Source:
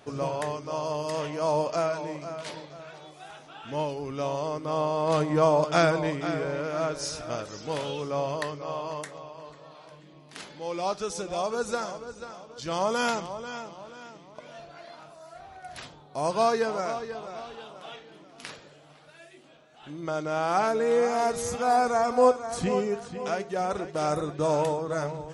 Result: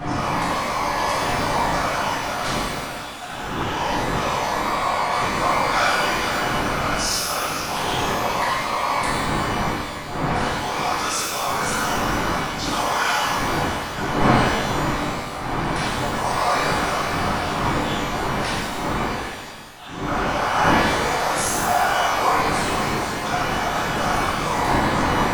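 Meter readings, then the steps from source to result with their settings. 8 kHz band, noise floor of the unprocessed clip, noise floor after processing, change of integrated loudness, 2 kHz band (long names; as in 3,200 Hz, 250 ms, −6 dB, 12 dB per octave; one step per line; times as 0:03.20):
+12.0 dB, −53 dBFS, −30 dBFS, +6.5 dB, +14.5 dB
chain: wind on the microphone 350 Hz −24 dBFS
low shelf with overshoot 660 Hz −10.5 dB, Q 1.5
in parallel at −0.5 dB: compressor whose output falls as the input rises −35 dBFS, ratio −0.5
on the sum: random phases in short frames
reverb with rising layers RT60 1.1 s, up +12 semitones, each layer −8 dB, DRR −6.5 dB
level −2.5 dB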